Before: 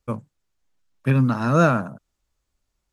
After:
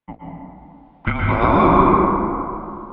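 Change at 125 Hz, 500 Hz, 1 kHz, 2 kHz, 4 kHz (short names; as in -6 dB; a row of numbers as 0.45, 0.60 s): -1.5, +5.5, +11.0, +3.5, +4.0 dB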